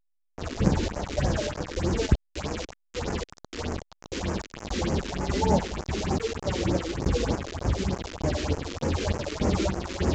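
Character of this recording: chopped level 1.7 Hz, depth 60%, duty 50%; a quantiser's noise floor 6-bit, dither none; phasing stages 4, 3.3 Hz, lowest notch 120–3700 Hz; A-law

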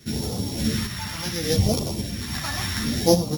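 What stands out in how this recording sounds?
a buzz of ramps at a fixed pitch in blocks of 8 samples; phasing stages 2, 0.69 Hz, lowest notch 390–1600 Hz; random-step tremolo 3.5 Hz; a shimmering, thickened sound

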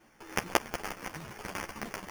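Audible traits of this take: aliases and images of a low sample rate 3.9 kHz, jitter 0%; a shimmering, thickened sound

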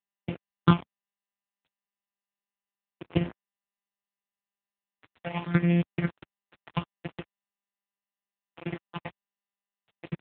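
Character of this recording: a buzz of ramps at a fixed pitch in blocks of 256 samples; phasing stages 6, 0.73 Hz, lowest notch 270–1300 Hz; a quantiser's noise floor 6-bit, dither none; AMR-NB

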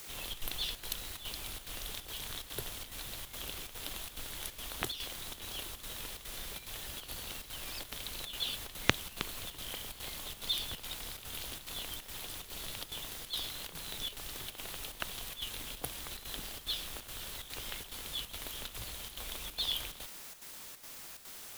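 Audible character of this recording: a quantiser's noise floor 8-bit, dither triangular; chopped level 2.4 Hz, depth 60%, duty 80%

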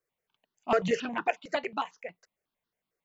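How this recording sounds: notches that jump at a steady rate 11 Hz 890–2300 Hz

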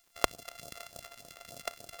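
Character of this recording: a buzz of ramps at a fixed pitch in blocks of 64 samples; phasing stages 2, 3.4 Hz, lowest notch 130–2000 Hz; a quantiser's noise floor 10-bit, dither none

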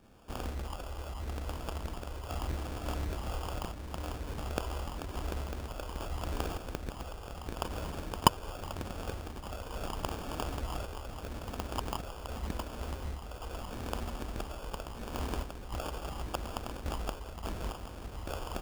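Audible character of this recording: phasing stages 8, 0.8 Hz, lowest notch 220–3200 Hz; random-step tremolo; aliases and images of a low sample rate 2 kHz, jitter 0%

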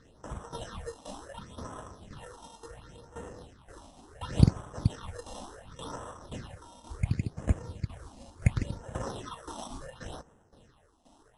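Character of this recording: tremolo saw down 1.9 Hz, depth 75%; aliases and images of a low sample rate 2.3 kHz, jitter 0%; phasing stages 6, 0.7 Hz, lowest notch 110–4400 Hz; MP3

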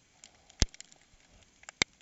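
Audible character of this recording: noise floor -67 dBFS; spectral tilt -2.0 dB/octave

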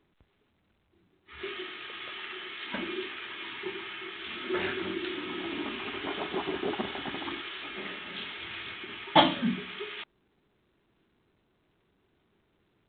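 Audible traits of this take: A-law

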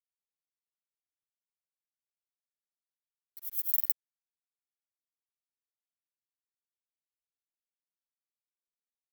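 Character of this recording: a quantiser's noise floor 10-bit, dither none; tremolo triangle 4.6 Hz, depth 35%; a shimmering, thickened sound

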